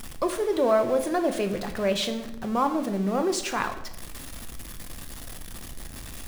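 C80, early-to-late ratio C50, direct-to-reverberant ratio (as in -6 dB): 13.0 dB, 11.0 dB, 6.5 dB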